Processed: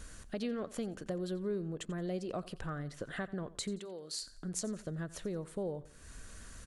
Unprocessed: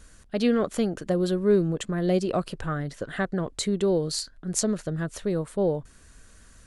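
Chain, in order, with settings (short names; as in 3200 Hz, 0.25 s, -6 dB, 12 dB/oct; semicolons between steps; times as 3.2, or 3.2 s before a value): compressor 2.5:1, threshold -46 dBFS, peak gain reduction 19.5 dB; 3.78–4.21 HPF 1300 Hz -> 640 Hz 6 dB/oct; feedback echo 88 ms, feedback 37%, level -18 dB; gain +2.5 dB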